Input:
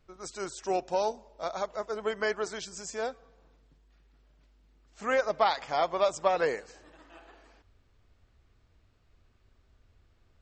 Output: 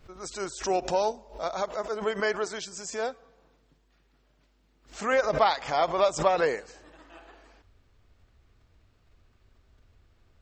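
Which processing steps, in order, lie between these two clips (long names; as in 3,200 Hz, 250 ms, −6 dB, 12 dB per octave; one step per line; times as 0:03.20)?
0:01.63–0:05.13: low-shelf EQ 76 Hz −11 dB
background raised ahead of every attack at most 150 dB per second
level +2.5 dB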